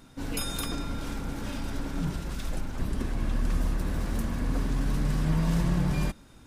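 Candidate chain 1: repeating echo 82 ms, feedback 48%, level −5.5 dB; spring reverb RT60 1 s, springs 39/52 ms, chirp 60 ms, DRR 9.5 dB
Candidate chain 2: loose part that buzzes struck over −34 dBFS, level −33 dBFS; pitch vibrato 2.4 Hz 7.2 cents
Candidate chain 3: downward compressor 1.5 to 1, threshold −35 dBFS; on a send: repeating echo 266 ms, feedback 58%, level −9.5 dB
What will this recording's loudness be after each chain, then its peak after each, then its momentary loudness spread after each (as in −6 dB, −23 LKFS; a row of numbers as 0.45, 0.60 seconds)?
−29.5, −31.0, −34.5 LKFS; −13.0, −14.0, −18.5 dBFS; 8, 9, 6 LU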